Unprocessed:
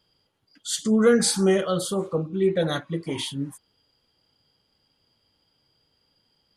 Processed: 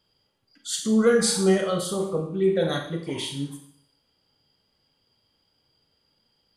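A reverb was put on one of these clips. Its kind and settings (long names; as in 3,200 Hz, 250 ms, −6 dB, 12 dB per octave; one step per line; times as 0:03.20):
four-comb reverb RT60 0.62 s, combs from 28 ms, DRR 4 dB
level −2 dB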